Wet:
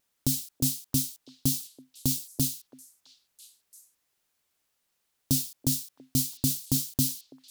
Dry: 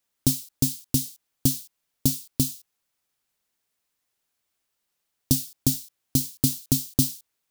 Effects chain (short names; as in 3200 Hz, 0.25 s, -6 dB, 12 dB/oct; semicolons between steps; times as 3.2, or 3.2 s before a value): limiter -14 dBFS, peak gain reduction 8.5 dB; delay with a stepping band-pass 0.333 s, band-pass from 480 Hz, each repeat 1.4 oct, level -11 dB; vibrato 1.4 Hz 15 cents; gain +2 dB